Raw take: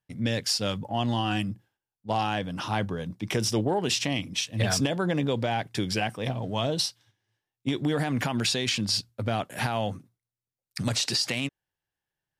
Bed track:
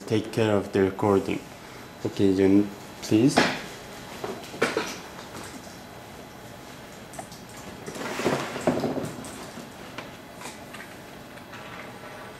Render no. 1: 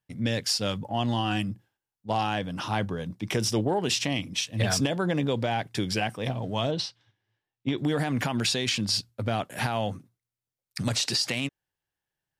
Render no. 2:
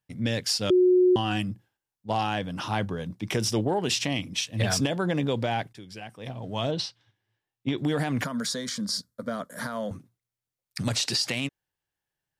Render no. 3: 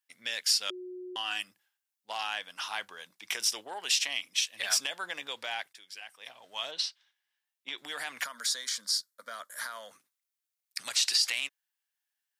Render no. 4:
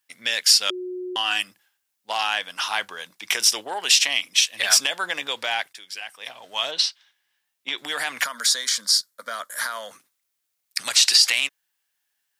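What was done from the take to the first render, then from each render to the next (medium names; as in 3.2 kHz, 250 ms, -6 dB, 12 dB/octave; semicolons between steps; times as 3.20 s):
6.71–7.78 s: low-pass 4 kHz
0.70–1.16 s: bleep 364 Hz -15.5 dBFS; 5.73–6.69 s: fade in quadratic, from -16.5 dB; 8.24–9.91 s: static phaser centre 530 Hz, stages 8
high-pass 1.4 kHz 12 dB/octave; treble shelf 8.9 kHz +4.5 dB
trim +10.5 dB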